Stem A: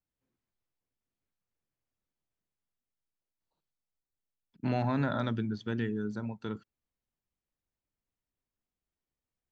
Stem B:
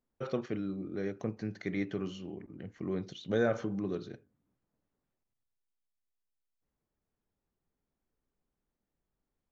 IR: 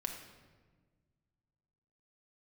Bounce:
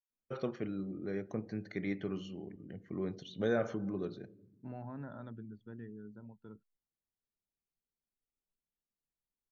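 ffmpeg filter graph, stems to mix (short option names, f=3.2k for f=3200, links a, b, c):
-filter_complex "[0:a]lowpass=f=1.3k:p=1,volume=-14.5dB[a];[1:a]adelay=100,volume=-4.5dB,asplit=2[b][c];[c]volume=-11dB[d];[2:a]atrim=start_sample=2205[e];[d][e]afir=irnorm=-1:irlink=0[f];[a][b][f]amix=inputs=3:normalize=0,afftdn=nr=13:nf=-62"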